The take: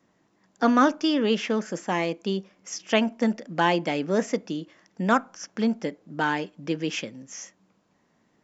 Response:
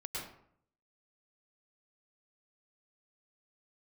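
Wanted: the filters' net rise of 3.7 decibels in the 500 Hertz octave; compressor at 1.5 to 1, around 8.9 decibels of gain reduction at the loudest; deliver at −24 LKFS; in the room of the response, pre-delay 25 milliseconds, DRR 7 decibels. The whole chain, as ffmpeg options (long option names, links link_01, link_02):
-filter_complex "[0:a]equalizer=frequency=500:width_type=o:gain=4.5,acompressor=threshold=-39dB:ratio=1.5,asplit=2[link_01][link_02];[1:a]atrim=start_sample=2205,adelay=25[link_03];[link_02][link_03]afir=irnorm=-1:irlink=0,volume=-8dB[link_04];[link_01][link_04]amix=inputs=2:normalize=0,volume=7.5dB"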